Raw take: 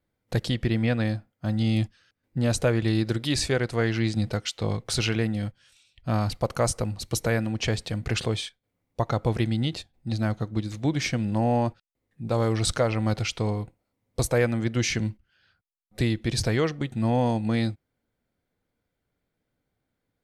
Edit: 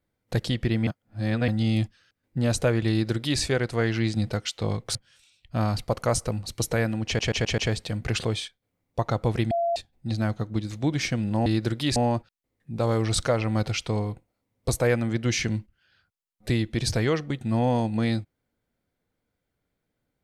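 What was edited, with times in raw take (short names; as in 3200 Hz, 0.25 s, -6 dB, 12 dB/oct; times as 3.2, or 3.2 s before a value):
0.87–1.48 reverse
2.9–3.4 copy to 11.47
4.95–5.48 cut
7.59 stutter 0.13 s, 5 plays
9.52–9.77 bleep 682 Hz -21.5 dBFS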